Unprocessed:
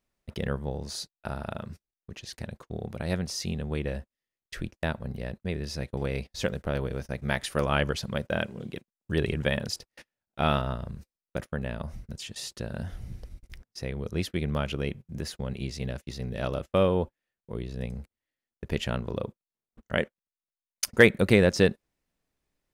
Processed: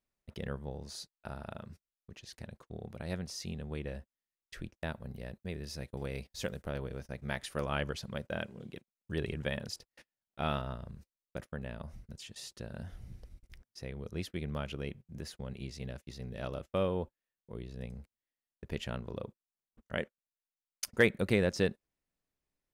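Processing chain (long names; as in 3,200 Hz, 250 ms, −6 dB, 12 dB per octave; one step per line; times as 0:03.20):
0:04.87–0:06.70: high-shelf EQ 11,000 Hz → 7,000 Hz +9 dB
level −8.5 dB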